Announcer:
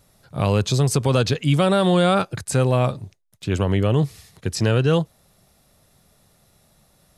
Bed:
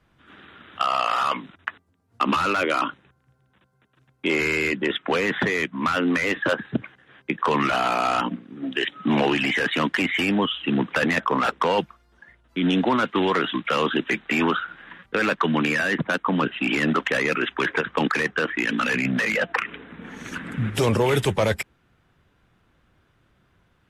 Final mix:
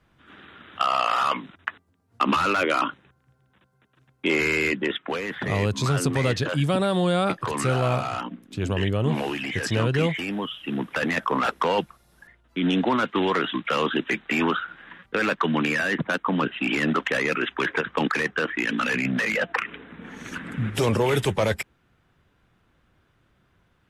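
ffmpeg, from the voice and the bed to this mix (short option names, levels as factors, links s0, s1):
-filter_complex "[0:a]adelay=5100,volume=0.562[s0];[1:a]volume=2,afade=t=out:st=4.7:d=0.51:silence=0.421697,afade=t=in:st=10.59:d=0.78:silence=0.501187[s1];[s0][s1]amix=inputs=2:normalize=0"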